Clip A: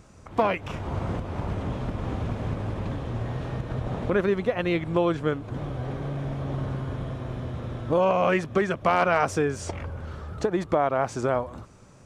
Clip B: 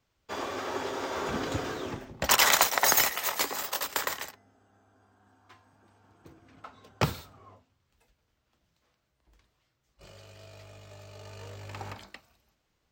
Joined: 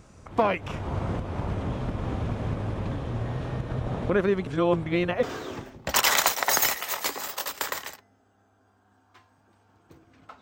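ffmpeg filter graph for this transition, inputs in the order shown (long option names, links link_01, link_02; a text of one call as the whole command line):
ffmpeg -i cue0.wav -i cue1.wav -filter_complex "[0:a]apad=whole_dur=10.41,atrim=end=10.41,asplit=2[link_01][link_02];[link_01]atrim=end=4.472[link_03];[link_02]atrim=start=4.468:end=5.232,asetpts=PTS-STARTPTS,areverse[link_04];[1:a]atrim=start=1.578:end=6.76[link_05];[link_03][link_04]acrossfade=duration=0.004:curve1=hsin:curve2=hsin[link_06];[link_06][link_05]acrossfade=duration=0.004:curve1=hsin:curve2=hsin" out.wav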